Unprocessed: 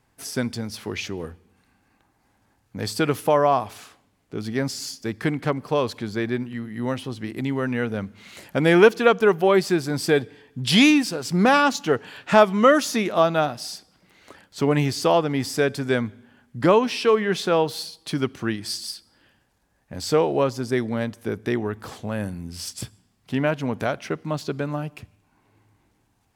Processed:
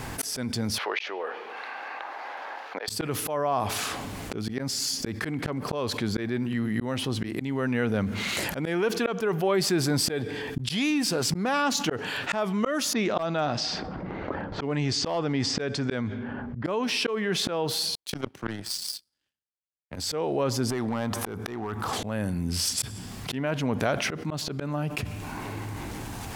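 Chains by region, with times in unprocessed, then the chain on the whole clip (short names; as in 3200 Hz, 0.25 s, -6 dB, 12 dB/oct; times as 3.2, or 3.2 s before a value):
0.78–2.88 HPF 550 Hz 24 dB/oct + air absorption 300 m
12.93–16.65 low-pass opened by the level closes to 810 Hz, open at -19 dBFS + LPF 7100 Hz 24 dB/oct + hard clip -10 dBFS
17.95–19.96 power-law curve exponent 2 + three-band expander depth 70%
20.7–21.93 band shelf 990 Hz +8.5 dB 1.1 oct + compressor 12:1, threshold -35 dBFS + hard clip -34 dBFS
whole clip: auto swell 0.769 s; fast leveller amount 70%; gain -4 dB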